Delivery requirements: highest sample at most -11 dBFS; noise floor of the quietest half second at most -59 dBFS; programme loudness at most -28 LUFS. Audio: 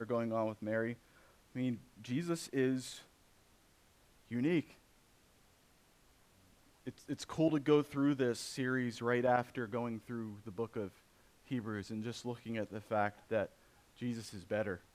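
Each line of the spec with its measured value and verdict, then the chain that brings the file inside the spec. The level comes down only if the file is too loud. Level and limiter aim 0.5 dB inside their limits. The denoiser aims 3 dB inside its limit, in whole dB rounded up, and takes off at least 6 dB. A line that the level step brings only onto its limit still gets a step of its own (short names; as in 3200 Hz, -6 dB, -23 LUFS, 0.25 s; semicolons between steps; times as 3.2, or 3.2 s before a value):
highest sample -17.5 dBFS: OK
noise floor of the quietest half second -68 dBFS: OK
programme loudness -37.5 LUFS: OK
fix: none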